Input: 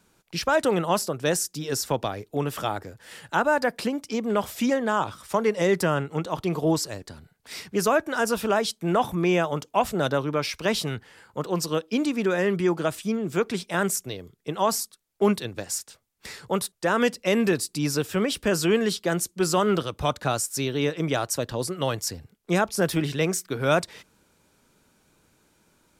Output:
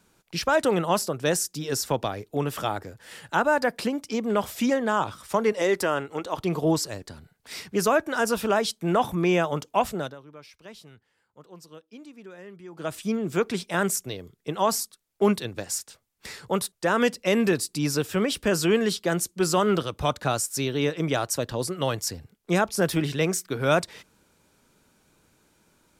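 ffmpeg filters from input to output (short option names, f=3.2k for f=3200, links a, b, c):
-filter_complex "[0:a]asettb=1/sr,asplit=3[a][b][c];[a]atrim=end=5.524[d];[b]atrim=start=5.52:end=6.38,asetpts=PTS-STARTPTS,afade=t=in:d=0.004:c=qsin,afade=t=out:st=0.856:d=0.004:c=qsin,equalizer=f=160:t=o:w=0.77:g=-13.5[e];[c]atrim=start=6.376[f];[d][e]acrossfade=d=0.004:c1=hsin:c2=qsin[g];[g][f]acrossfade=d=0.004:c1=qsin:c2=hsin,asplit=3[h][i][j];[h]atrim=end=10.15,asetpts=PTS-STARTPTS,afade=t=out:st=9.7:d=0.45:c=qsin:silence=0.0944061[k];[i]atrim=start=10.15:end=12.72,asetpts=PTS-STARTPTS,volume=-20.5dB[l];[j]atrim=start=12.72,asetpts=PTS-STARTPTS,afade=t=in:d=0.45:c=qsin:silence=0.0944061[m];[k][l][m]concat=n=3:v=0:a=1"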